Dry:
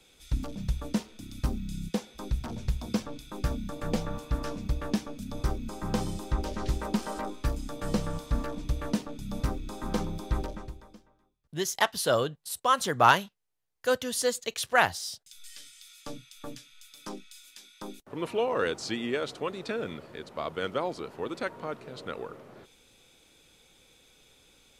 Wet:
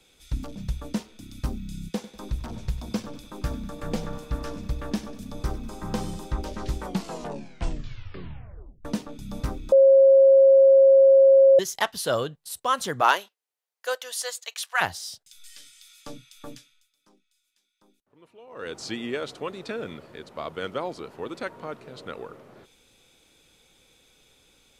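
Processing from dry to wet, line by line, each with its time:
1.91–6.27 s: feedback delay 97 ms, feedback 54%, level -15 dB
6.77 s: tape stop 2.08 s
9.72–11.59 s: bleep 541 Hz -11 dBFS
13.00–14.80 s: high-pass 300 Hz -> 890 Hz 24 dB/octave
16.56–18.80 s: dip -22 dB, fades 0.40 s quadratic

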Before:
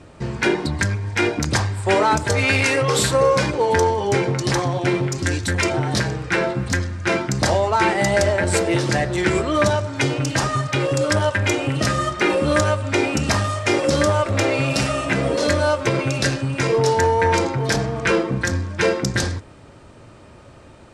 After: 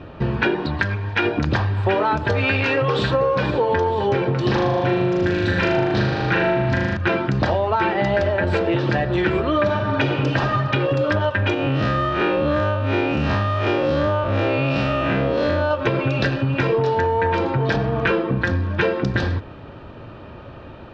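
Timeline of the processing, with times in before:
0.63–1.25 s: bass shelf 450 Hz -7 dB
2.90–3.30 s: echo throw 480 ms, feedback 75%, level -14 dB
4.44–6.97 s: flutter echo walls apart 6.7 m, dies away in 1.2 s
9.56–10.42 s: reverb throw, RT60 1.3 s, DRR 3.5 dB
11.54–15.71 s: spectral blur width 108 ms
whole clip: low-pass 3.5 kHz 24 dB/octave; band-stop 2.1 kHz, Q 7.1; compression, threshold -23 dBFS; trim +6.5 dB

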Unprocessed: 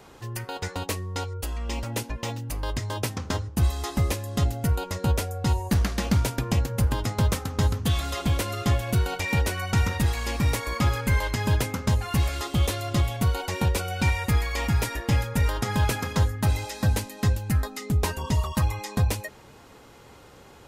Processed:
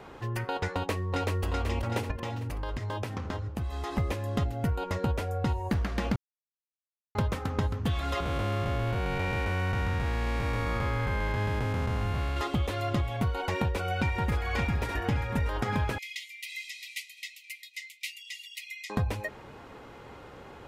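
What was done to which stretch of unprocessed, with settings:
0.74–1.43 s: echo throw 380 ms, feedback 50%, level -1.5 dB
2.11–3.98 s: compression, threshold -32 dBFS
6.16–7.15 s: mute
8.20–12.37 s: spectral blur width 394 ms
13.58–14.18 s: echo throw 570 ms, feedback 60%, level -4 dB
15.98–18.90 s: brick-wall FIR high-pass 1.9 kHz
whole clip: tone controls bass -2 dB, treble -14 dB; compression, threshold -29 dBFS; trim +3.5 dB

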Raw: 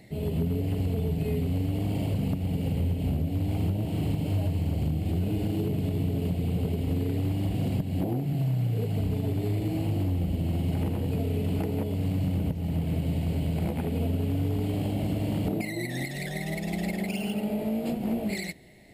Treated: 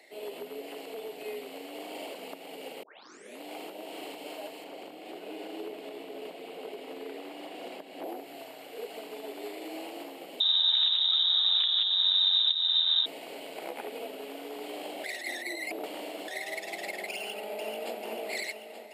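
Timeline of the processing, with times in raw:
2.83 s: tape start 0.57 s
4.64–8.04 s: treble shelf 4.7 kHz -8 dB
10.40–13.06 s: frequency inversion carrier 3.8 kHz
15.04–16.28 s: reverse
17.14–17.98 s: echo throw 440 ms, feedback 65%, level -6 dB
whole clip: Bessel high-pass 600 Hz, order 6; treble shelf 10 kHz -7 dB; trim +2 dB

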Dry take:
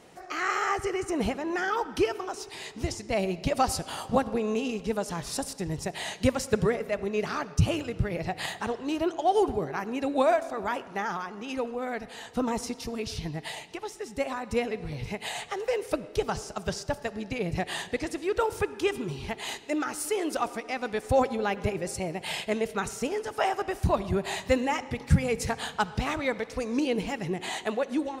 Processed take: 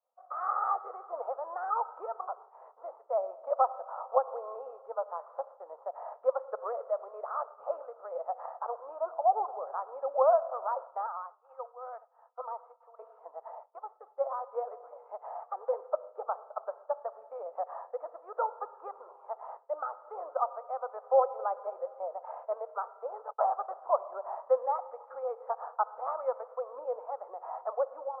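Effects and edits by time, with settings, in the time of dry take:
11.06–12.99 s: high-pass 1.2 kHz 6 dB/octave
23.28–23.74 s: gate -40 dBFS, range -26 dB
whole clip: expander -37 dBFS; Chebyshev band-pass 510–1300 Hz, order 4

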